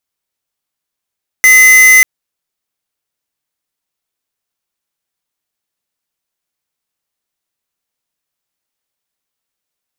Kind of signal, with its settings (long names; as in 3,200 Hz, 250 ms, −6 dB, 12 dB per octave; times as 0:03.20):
tone square 2,040 Hz −4.5 dBFS 0.59 s